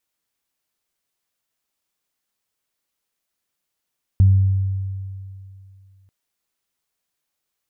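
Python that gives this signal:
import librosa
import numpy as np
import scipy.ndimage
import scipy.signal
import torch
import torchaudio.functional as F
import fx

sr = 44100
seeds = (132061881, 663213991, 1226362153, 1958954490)

y = fx.additive(sr, length_s=1.89, hz=96.4, level_db=-8.0, upper_db=(-19,), decay_s=2.56, upper_decays_s=(1.12,))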